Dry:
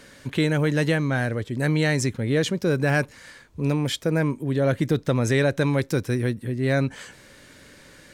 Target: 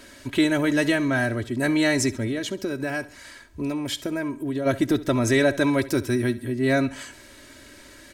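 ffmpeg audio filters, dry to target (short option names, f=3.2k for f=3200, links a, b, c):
-filter_complex "[0:a]highshelf=f=8.8k:g=4,aecho=1:1:3.1:0.74,asplit=3[a][b][c];[a]afade=t=out:st=2.27:d=0.02[d];[b]acompressor=threshold=-25dB:ratio=6,afade=t=in:st=2.27:d=0.02,afade=t=out:st=4.65:d=0.02[e];[c]afade=t=in:st=4.65:d=0.02[f];[d][e][f]amix=inputs=3:normalize=0,aecho=1:1:68|136|204|272:0.126|0.0554|0.0244|0.0107"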